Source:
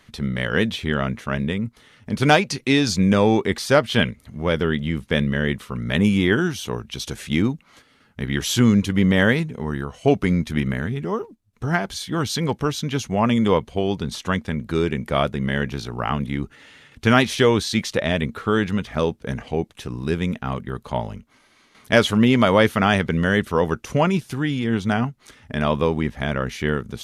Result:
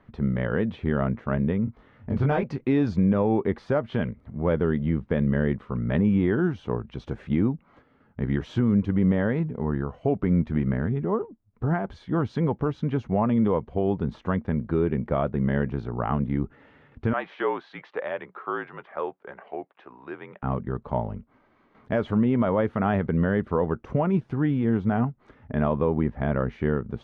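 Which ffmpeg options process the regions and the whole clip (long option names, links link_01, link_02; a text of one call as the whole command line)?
ffmpeg -i in.wav -filter_complex "[0:a]asettb=1/sr,asplit=3[link_01][link_02][link_03];[link_01]atrim=end=1.654[link_04];[link_02]atrim=start=1.65:end=2.43,asetpts=PTS-STARTPTS,afade=type=in:duration=0.004:curve=qsin,afade=type=out:start_time=0.776:duration=0.004:curve=qsin,asubboost=boost=8.5:cutoff=130,acompressor=threshold=-18dB:ratio=3:attack=3.2:release=140:knee=1:detection=peak,asplit=2[link_05][link_06];[link_06]adelay=22,volume=-2.5dB[link_07];[link_05][link_07]amix=inputs=2:normalize=0,atrim=end_sample=34398[link_08];[link_03]atrim=start=2.426[link_09];[link_04][link_08]acrossfade=duration=0.004:curve1=hsin:curve2=qsin[link_10];[link_10][link_09]acrossfade=duration=0.004:curve1=qsin:curve2=hsin,asettb=1/sr,asplit=3[link_11][link_12][link_13];[link_11]atrim=end=17.134[link_14];[link_12]atrim=start=17.13:end=20.43,asetpts=PTS-STARTPTS,afade=type=in:duration=0.004:curve=qsin,afade=type=out:start_time=3.296:duration=0.004:curve=qsin,afreqshift=-47,highpass=690,lowpass=3200[link_15];[link_13]atrim=start=20.426[link_16];[link_14][link_15]acrossfade=duration=0.004:curve1=hsin:curve2=qsin[link_17];[link_17][link_16]acrossfade=duration=0.004:curve1=qsin:curve2=hsin,lowpass=1100,alimiter=limit=-13.5dB:level=0:latency=1:release=153" out.wav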